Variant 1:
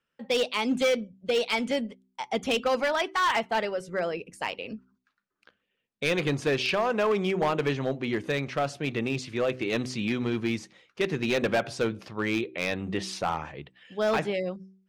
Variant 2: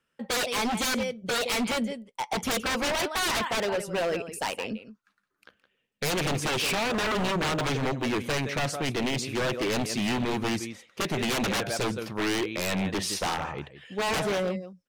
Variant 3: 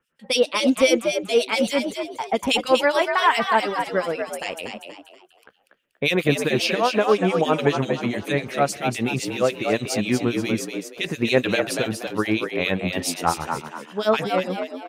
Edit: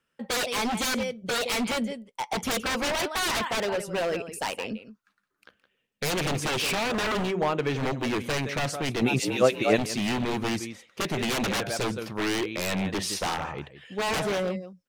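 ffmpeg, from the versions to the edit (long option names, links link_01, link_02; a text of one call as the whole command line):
ffmpeg -i take0.wav -i take1.wav -i take2.wav -filter_complex "[1:a]asplit=3[link_01][link_02][link_03];[link_01]atrim=end=7.35[link_04];[0:a]atrim=start=7.19:end=7.82[link_05];[link_02]atrim=start=7.66:end=9.022[link_06];[2:a]atrim=start=9.018:end=9.782[link_07];[link_03]atrim=start=9.778[link_08];[link_04][link_05]acrossfade=duration=0.16:curve1=tri:curve2=tri[link_09];[link_09][link_06]acrossfade=duration=0.16:curve1=tri:curve2=tri[link_10];[link_10][link_07]acrossfade=duration=0.004:curve1=hsin:curve2=hsin[link_11];[link_11][link_08]acrossfade=duration=0.004:curve1=hsin:curve2=hsin" out.wav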